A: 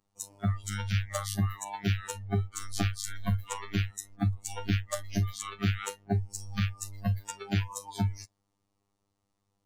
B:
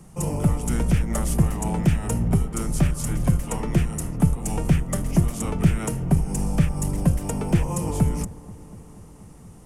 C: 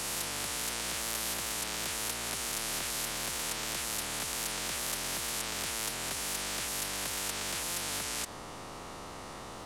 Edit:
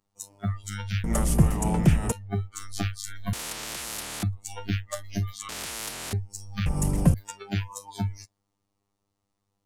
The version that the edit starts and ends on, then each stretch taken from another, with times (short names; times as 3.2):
A
1.04–2.12 from B
3.33–4.23 from C
5.49–6.13 from C
6.66–7.14 from B